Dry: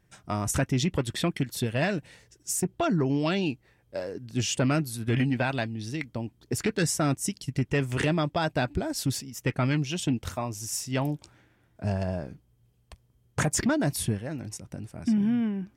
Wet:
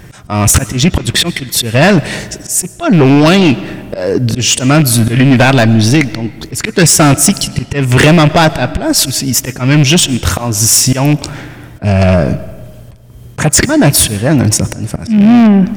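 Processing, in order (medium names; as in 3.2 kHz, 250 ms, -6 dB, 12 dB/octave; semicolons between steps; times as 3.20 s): rattle on loud lows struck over -27 dBFS, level -32 dBFS; in parallel at +1 dB: compression, threshold -38 dBFS, peak gain reduction 15.5 dB; on the sum: slow attack 308 ms; saturation -26 dBFS, distortion -10 dB; on a send at -18 dB: reverberation RT60 1.6 s, pre-delay 70 ms; on the sum: loudness maximiser +27 dB; trim -1 dB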